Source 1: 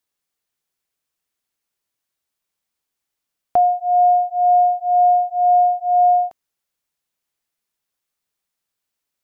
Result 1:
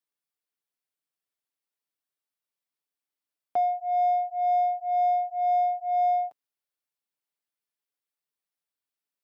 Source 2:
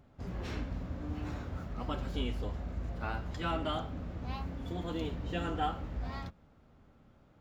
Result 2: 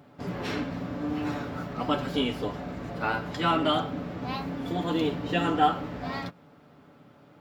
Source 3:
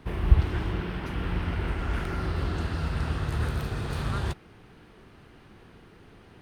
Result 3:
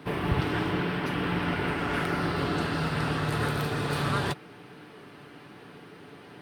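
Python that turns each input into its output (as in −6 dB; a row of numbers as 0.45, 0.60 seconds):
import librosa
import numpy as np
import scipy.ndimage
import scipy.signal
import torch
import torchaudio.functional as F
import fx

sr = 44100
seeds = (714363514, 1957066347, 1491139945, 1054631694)

p1 = scipy.signal.sosfilt(scipy.signal.butter(2, 170.0, 'highpass', fs=sr, output='sos'), x)
p2 = fx.peak_eq(p1, sr, hz=6600.0, db=-5.0, octaves=0.32)
p3 = p2 + 0.4 * np.pad(p2, (int(6.9 * sr / 1000.0), 0))[:len(p2)]
p4 = 10.0 ** (-17.5 / 20.0) * np.tanh(p3 / 10.0 ** (-17.5 / 20.0))
p5 = p3 + (p4 * librosa.db_to_amplitude(-9.0))
y = p5 * 10.0 ** (-30 / 20.0) / np.sqrt(np.mean(np.square(p5)))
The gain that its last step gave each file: −13.5, +7.5, +3.5 decibels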